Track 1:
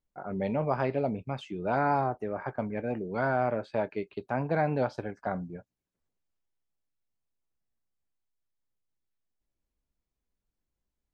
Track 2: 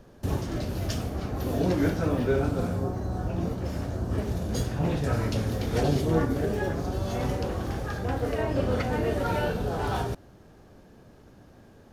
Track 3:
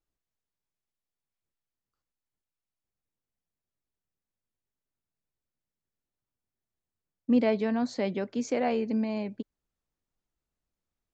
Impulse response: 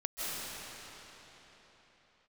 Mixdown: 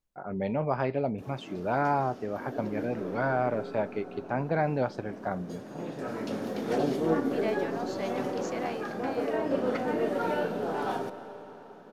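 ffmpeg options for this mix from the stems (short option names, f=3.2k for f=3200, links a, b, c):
-filter_complex "[0:a]volume=0dB,asplit=2[a][b];[1:a]highpass=f=200:w=0.5412,highpass=f=200:w=1.3066,highshelf=f=2.6k:g=-9,aeval=exprs='0.178*(cos(1*acos(clip(val(0)/0.178,-1,1)))-cos(1*PI/2))+0.00355*(cos(2*acos(clip(val(0)/0.178,-1,1)))-cos(2*PI/2))':c=same,adelay=950,volume=-1dB,asplit=2[c][d];[d]volume=-17dB[e];[2:a]highpass=600,volume=-3.5dB[f];[b]apad=whole_len=567811[g];[c][g]sidechaincompress=threshold=-45dB:ratio=5:attack=34:release=891[h];[3:a]atrim=start_sample=2205[i];[e][i]afir=irnorm=-1:irlink=0[j];[a][h][f][j]amix=inputs=4:normalize=0"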